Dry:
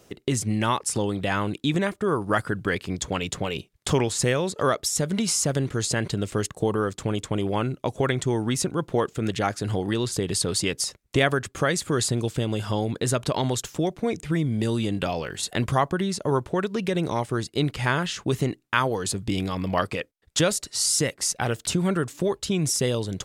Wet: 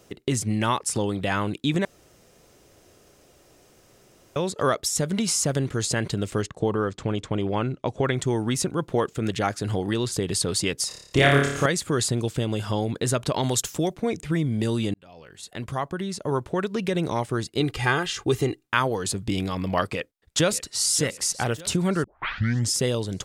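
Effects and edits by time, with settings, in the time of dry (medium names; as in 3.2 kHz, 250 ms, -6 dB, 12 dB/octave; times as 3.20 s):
1.85–4.36 s: room tone
6.42–8.13 s: distance through air 84 m
10.88–11.66 s: flutter echo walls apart 4.9 m, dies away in 0.73 s
13.42–13.94 s: treble shelf 3.9 kHz -> 6.4 kHz +8.5 dB
14.94–16.74 s: fade in
17.60–18.67 s: comb 2.5 ms
19.91–20.84 s: echo throw 590 ms, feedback 45%, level -15 dB
22.04 s: tape start 0.73 s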